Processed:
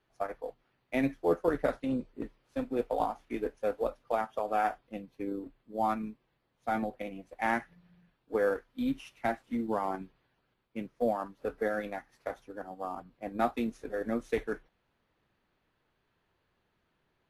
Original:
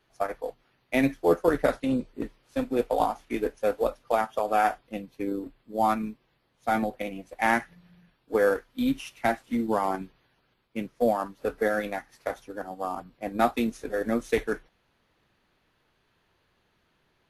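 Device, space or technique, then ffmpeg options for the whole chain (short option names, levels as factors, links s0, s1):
behind a face mask: -af "highshelf=f=3400:g=-7.5,volume=0.531"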